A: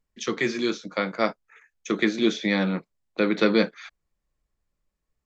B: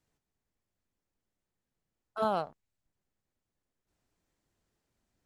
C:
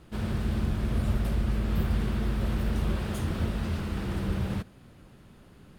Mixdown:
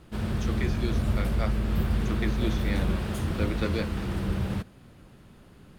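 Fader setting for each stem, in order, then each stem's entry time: -10.5 dB, off, +1.0 dB; 0.20 s, off, 0.00 s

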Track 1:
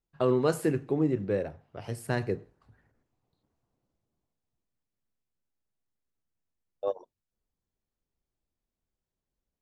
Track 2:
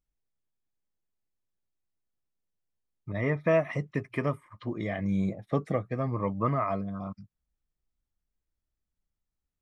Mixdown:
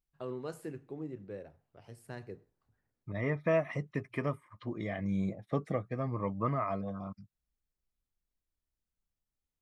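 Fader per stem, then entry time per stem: -15.0, -4.5 dB; 0.00, 0.00 s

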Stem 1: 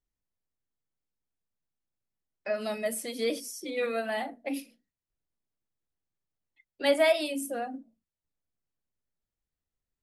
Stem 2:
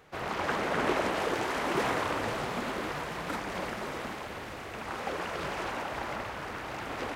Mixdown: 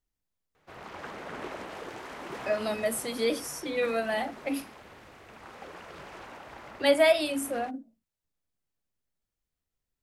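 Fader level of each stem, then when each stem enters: +2.0, -10.5 dB; 0.00, 0.55 s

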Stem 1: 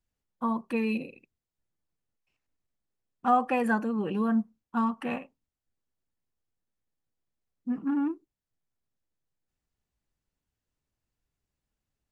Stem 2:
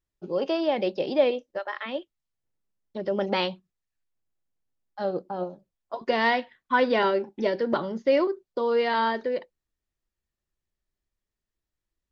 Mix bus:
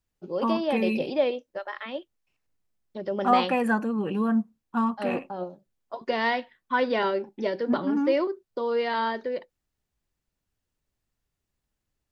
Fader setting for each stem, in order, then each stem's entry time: +2.0, -2.5 dB; 0.00, 0.00 s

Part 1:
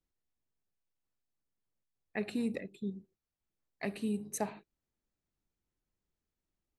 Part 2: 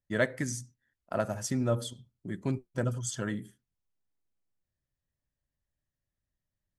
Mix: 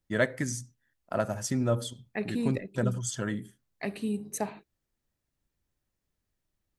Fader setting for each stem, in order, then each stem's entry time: +3.0, +1.5 dB; 0.00, 0.00 s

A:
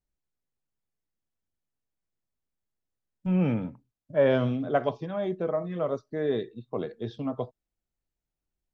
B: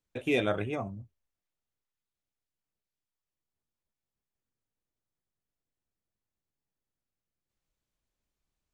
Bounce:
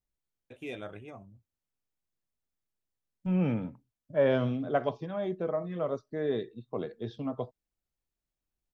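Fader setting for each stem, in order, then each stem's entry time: -3.0, -12.5 dB; 0.00, 0.35 s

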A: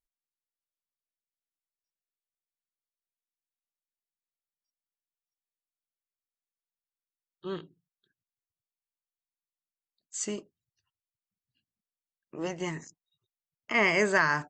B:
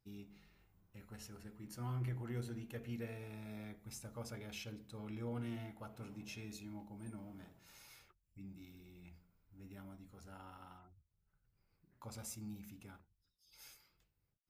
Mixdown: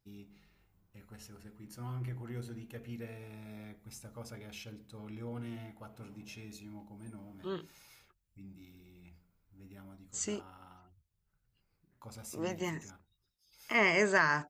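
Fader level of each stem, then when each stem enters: -3.0, +0.5 dB; 0.00, 0.00 s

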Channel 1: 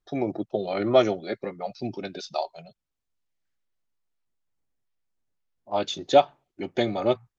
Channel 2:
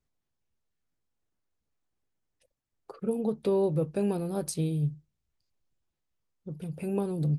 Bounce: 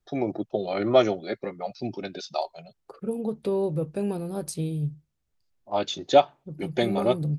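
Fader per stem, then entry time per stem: 0.0, 0.0 dB; 0.00, 0.00 s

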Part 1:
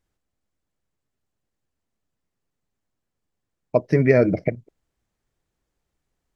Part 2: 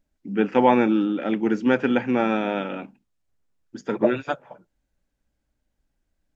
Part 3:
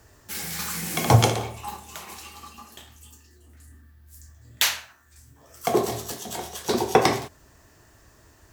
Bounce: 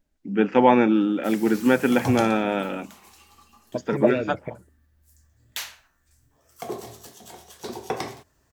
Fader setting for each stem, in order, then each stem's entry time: -11.5, +1.0, -11.0 dB; 0.00, 0.00, 0.95 s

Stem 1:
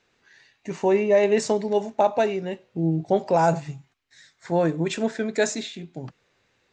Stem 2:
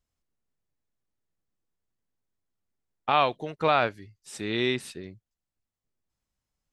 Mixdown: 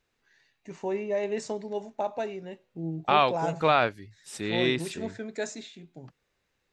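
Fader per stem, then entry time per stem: -10.5, +0.5 dB; 0.00, 0.00 s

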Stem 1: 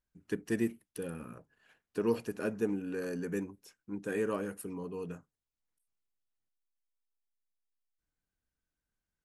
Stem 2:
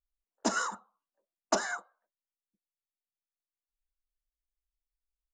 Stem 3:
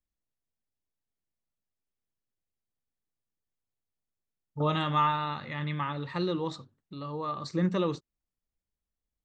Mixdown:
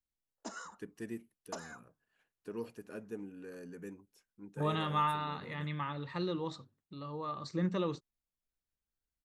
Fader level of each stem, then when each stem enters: -11.0, -15.0, -5.5 dB; 0.50, 0.00, 0.00 s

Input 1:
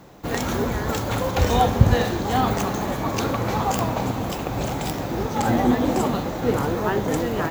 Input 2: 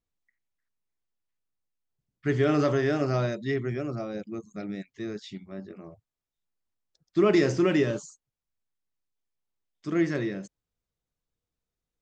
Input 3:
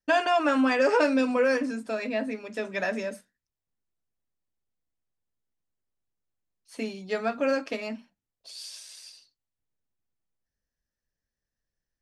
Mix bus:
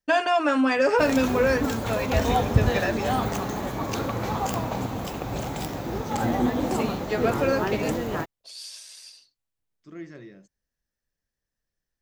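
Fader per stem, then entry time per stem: -4.5, -14.5, +1.5 dB; 0.75, 0.00, 0.00 s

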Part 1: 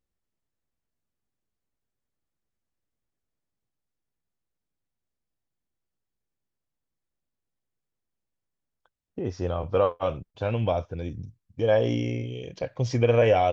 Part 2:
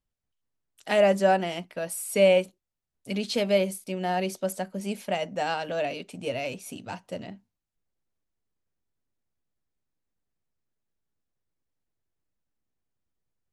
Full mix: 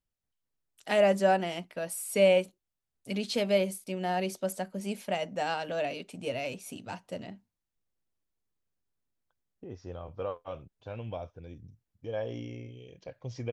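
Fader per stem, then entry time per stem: -13.0, -3.0 dB; 0.45, 0.00 s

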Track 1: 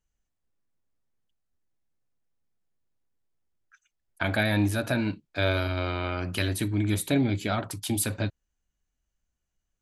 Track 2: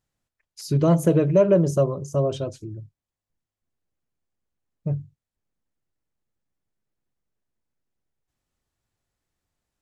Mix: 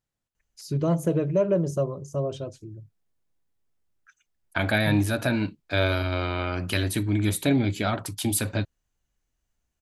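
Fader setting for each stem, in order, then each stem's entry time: +2.0, -5.5 dB; 0.35, 0.00 s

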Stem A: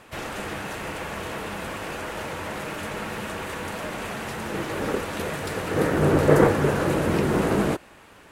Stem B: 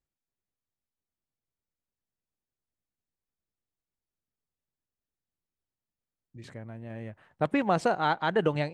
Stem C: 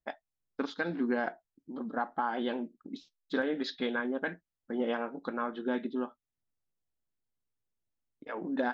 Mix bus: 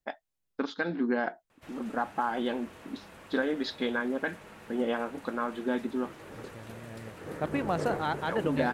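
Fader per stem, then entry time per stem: -18.0, -5.0, +2.0 dB; 1.50, 0.00, 0.00 s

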